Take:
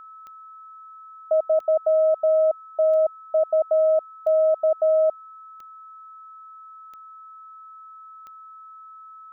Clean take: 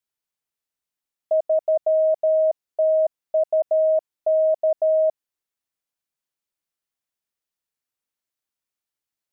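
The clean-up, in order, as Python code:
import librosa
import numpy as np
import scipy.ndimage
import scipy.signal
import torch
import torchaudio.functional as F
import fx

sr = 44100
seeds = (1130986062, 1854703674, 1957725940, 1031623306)

y = fx.fix_declick_ar(x, sr, threshold=10.0)
y = fx.notch(y, sr, hz=1300.0, q=30.0)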